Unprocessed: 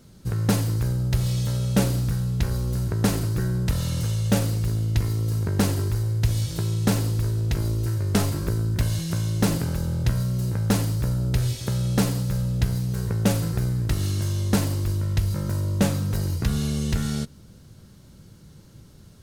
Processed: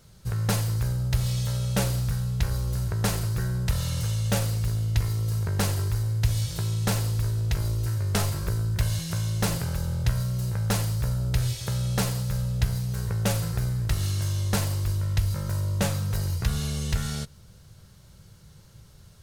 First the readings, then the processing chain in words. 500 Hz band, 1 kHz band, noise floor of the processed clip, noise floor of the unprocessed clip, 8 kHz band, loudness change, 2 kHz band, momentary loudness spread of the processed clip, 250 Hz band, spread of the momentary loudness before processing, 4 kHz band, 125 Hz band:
-4.5 dB, -1.0 dB, -51 dBFS, -49 dBFS, 0.0 dB, -2.5 dB, 0.0 dB, 3 LU, -7.5 dB, 3 LU, 0.0 dB, -2.0 dB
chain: bell 270 Hz -14.5 dB 0.97 oct

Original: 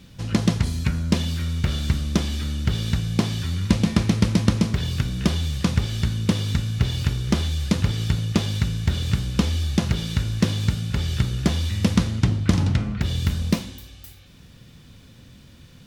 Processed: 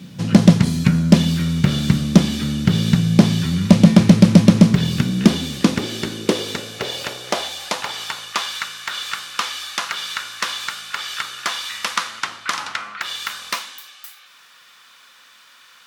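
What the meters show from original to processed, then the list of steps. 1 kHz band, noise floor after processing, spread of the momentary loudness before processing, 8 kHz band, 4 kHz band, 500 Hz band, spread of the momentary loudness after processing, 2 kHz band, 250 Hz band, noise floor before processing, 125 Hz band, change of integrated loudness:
+9.0 dB, -49 dBFS, 5 LU, +6.0 dB, +6.5 dB, +7.5 dB, 15 LU, +8.0 dB, +8.0 dB, -48 dBFS, +2.5 dB, +5.0 dB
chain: high-pass sweep 170 Hz -> 1200 Hz, 4.78–8.53; overloaded stage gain 7.5 dB; gain +6 dB

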